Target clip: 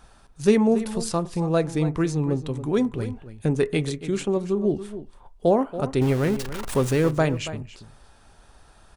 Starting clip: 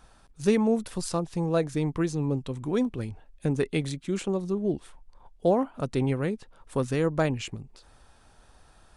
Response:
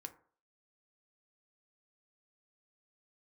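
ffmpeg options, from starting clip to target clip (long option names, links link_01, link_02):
-filter_complex "[0:a]asettb=1/sr,asplit=3[link_01][link_02][link_03];[link_01]atrim=end=6.014[link_04];[link_02]atrim=start=6.01:end=7.11,asetpts=PTS-STARTPTS,afade=type=in:duration=0.004:curve=qsin,afade=type=out:start_time=1.096:duration=0.004:curve=qsin,aeval=exprs='val(0)+0.5*0.0282*sgn(val(0))':channel_layout=same[link_05];[link_03]atrim=start=7.106[link_06];[link_04][link_05]acrossfade=duration=0.004:curve1=hsin:curve2=qsin[link_07];[link_07][link_06]acrossfade=duration=0.004:curve1=qsin:curve2=hsin,asplit=2[link_08][link_09];[link_09]adelay=279.9,volume=-13dB,highshelf=frequency=4000:gain=-6.3[link_10];[link_08][link_10]amix=inputs=2:normalize=0,asplit=2[link_11][link_12];[1:a]atrim=start_sample=2205,asetrate=57330,aresample=44100[link_13];[link_12][link_13]afir=irnorm=-1:irlink=0,volume=2dB[link_14];[link_11][link_14]amix=inputs=2:normalize=0"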